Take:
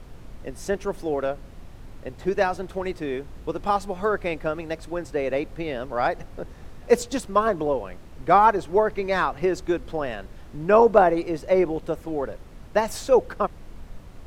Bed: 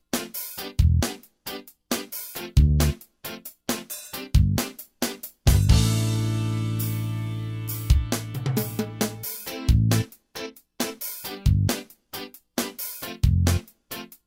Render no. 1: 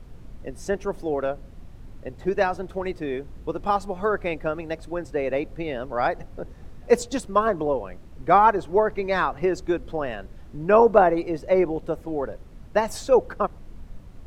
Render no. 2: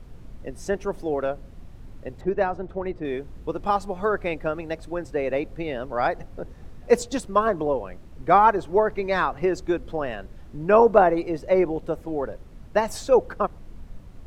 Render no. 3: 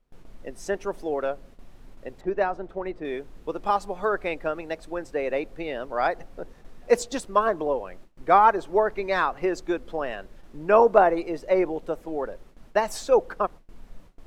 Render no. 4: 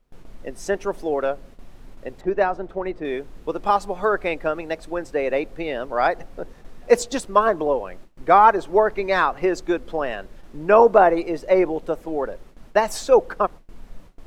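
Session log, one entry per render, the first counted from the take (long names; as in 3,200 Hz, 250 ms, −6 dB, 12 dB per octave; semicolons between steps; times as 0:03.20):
broadband denoise 6 dB, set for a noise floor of −43 dBFS
0:02.21–0:03.05: low-pass filter 1,300 Hz 6 dB per octave
noise gate with hold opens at −33 dBFS; parametric band 82 Hz −14 dB 2.3 octaves
level +4.5 dB; brickwall limiter −3 dBFS, peak gain reduction 3 dB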